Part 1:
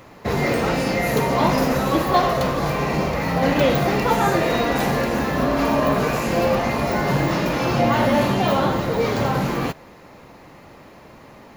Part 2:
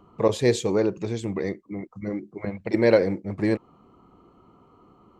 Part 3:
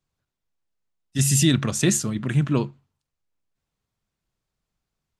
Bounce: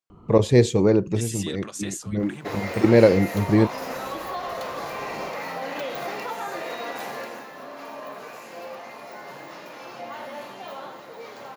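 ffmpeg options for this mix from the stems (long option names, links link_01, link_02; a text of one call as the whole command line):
ffmpeg -i stem1.wav -i stem2.wav -i stem3.wav -filter_complex "[0:a]adelay=2200,volume=-5.5dB,afade=type=out:start_time=6.92:duration=0.56:silence=0.298538[link_01];[1:a]adelay=100,volume=0.5dB[link_02];[2:a]volume=-7.5dB,asplit=2[link_03][link_04];[link_04]apad=whole_len=233512[link_05];[link_02][link_05]sidechaincompress=threshold=-29dB:ratio=8:attack=30:release=230[link_06];[link_01][link_03]amix=inputs=2:normalize=0,highpass=600,alimiter=limit=-23dB:level=0:latency=1:release=254,volume=0dB[link_07];[link_06][link_07]amix=inputs=2:normalize=0,lowshelf=frequency=260:gain=10.5" out.wav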